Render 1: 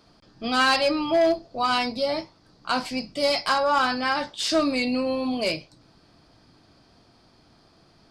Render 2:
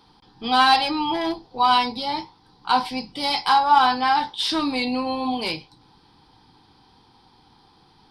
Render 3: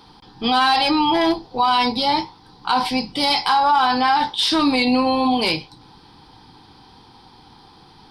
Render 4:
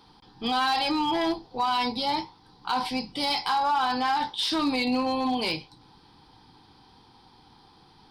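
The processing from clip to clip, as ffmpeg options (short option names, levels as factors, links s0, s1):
-af "superequalizer=8b=0.282:9b=3.16:13b=2:15b=0.355"
-af "alimiter=limit=0.133:level=0:latency=1:release=48,volume=2.51"
-af "asoftclip=type=hard:threshold=0.266,volume=0.398"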